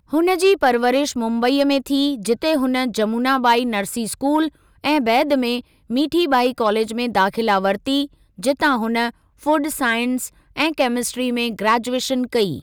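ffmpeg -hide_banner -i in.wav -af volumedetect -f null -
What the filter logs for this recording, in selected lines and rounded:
mean_volume: -19.2 dB
max_volume: -5.9 dB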